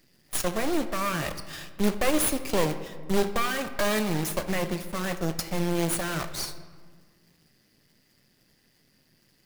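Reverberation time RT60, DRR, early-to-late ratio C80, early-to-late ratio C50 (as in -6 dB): 1.6 s, 9.0 dB, 12.5 dB, 11.0 dB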